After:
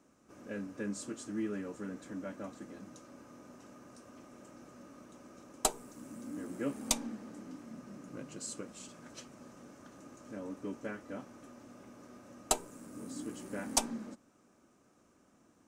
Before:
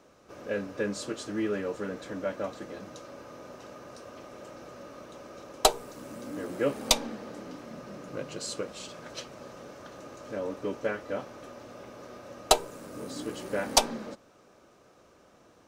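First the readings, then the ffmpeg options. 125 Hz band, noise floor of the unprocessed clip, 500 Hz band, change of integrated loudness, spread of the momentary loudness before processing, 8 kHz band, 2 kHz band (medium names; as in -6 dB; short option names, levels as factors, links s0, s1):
-5.5 dB, -59 dBFS, -12.0 dB, -8.0 dB, 20 LU, -4.0 dB, -10.0 dB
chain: -af "equalizer=f=250:t=o:w=1:g=9,equalizer=f=500:t=o:w=1:g=-6,equalizer=f=4000:t=o:w=1:g=-6,equalizer=f=8000:t=o:w=1:g=8,volume=0.355"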